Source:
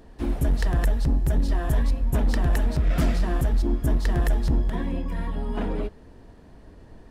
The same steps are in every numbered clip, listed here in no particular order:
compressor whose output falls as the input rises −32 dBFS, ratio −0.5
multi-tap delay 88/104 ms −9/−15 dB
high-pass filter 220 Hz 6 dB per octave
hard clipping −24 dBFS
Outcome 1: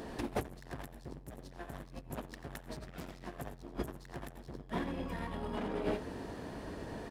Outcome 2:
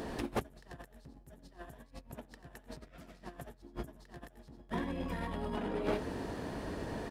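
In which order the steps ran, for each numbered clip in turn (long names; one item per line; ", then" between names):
hard clipping, then multi-tap delay, then compressor whose output falls as the input rises, then high-pass filter
multi-tap delay, then compressor whose output falls as the input rises, then hard clipping, then high-pass filter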